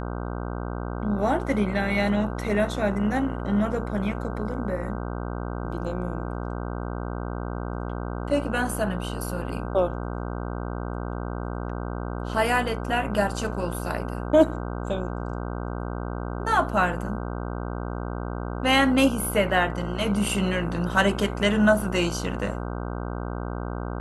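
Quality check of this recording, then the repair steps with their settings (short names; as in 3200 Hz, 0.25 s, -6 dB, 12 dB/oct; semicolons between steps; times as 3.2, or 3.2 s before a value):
buzz 60 Hz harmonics 26 -31 dBFS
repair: de-hum 60 Hz, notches 26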